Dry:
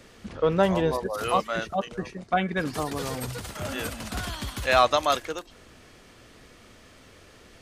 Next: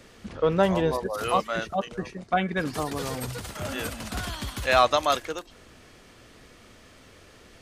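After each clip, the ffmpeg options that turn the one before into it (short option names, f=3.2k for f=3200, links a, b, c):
-af anull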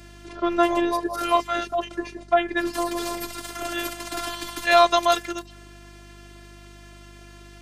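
-af "highpass=160,afftfilt=real='hypot(re,im)*cos(PI*b)':imag='0':win_size=512:overlap=0.75,aeval=exprs='val(0)+0.00224*(sin(2*PI*50*n/s)+sin(2*PI*2*50*n/s)/2+sin(2*PI*3*50*n/s)/3+sin(2*PI*4*50*n/s)/4+sin(2*PI*5*50*n/s)/5)':c=same,volume=7dB"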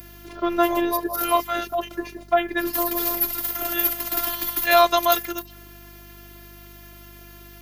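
-af "aexciter=amount=12.4:drive=8.5:freq=12k"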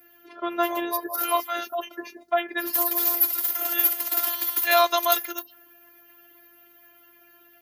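-filter_complex "[0:a]highpass=f=550:p=1,afftdn=nr=18:nf=-44,acrossover=split=5200[a][b];[b]dynaudnorm=f=380:g=9:m=11.5dB[c];[a][c]amix=inputs=2:normalize=0,volume=-2dB"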